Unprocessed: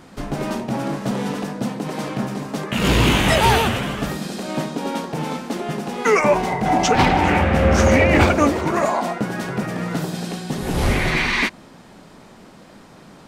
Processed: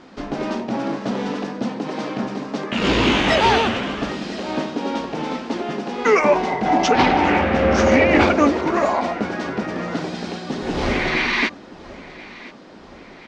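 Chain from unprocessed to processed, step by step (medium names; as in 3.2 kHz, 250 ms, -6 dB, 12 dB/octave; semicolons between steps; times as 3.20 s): low-pass 5.8 kHz 24 dB/octave; resonant low shelf 190 Hz -7 dB, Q 1.5; feedback delay 1025 ms, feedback 55%, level -19.5 dB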